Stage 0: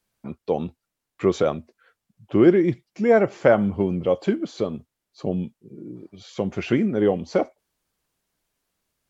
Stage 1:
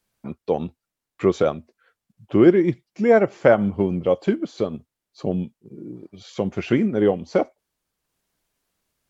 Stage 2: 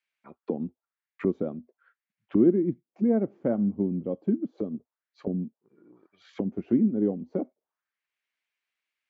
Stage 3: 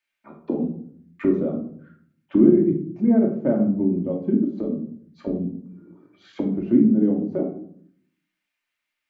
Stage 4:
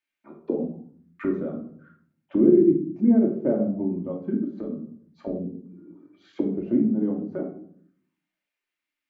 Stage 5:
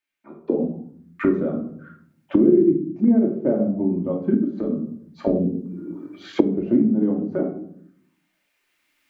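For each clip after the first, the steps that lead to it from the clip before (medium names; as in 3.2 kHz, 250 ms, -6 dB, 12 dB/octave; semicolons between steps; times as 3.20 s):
transient shaper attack 0 dB, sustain -4 dB; trim +1.5 dB
auto-wah 240–2300 Hz, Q 2.7, down, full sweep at -22 dBFS
simulated room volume 810 m³, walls furnished, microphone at 2.6 m; trim +1.5 dB
sweeping bell 0.33 Hz 280–1600 Hz +10 dB; trim -6 dB
recorder AGC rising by 7.6 dB/s; trim +1 dB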